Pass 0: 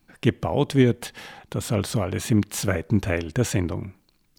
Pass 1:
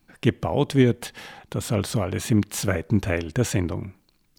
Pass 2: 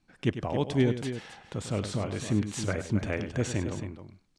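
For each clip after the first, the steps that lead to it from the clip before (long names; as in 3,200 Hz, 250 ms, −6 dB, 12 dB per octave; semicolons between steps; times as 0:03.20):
no processing that can be heard
low-pass filter 8,700 Hz 24 dB per octave; on a send: loudspeakers that aren't time-aligned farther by 34 metres −11 dB, 93 metres −10 dB; on the sum: level −7 dB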